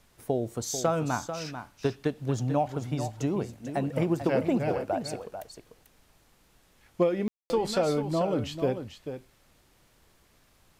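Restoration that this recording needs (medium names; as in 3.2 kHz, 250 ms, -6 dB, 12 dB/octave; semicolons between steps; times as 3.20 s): clip repair -14 dBFS; room tone fill 7.28–7.50 s; expander -55 dBFS, range -21 dB; inverse comb 442 ms -9.5 dB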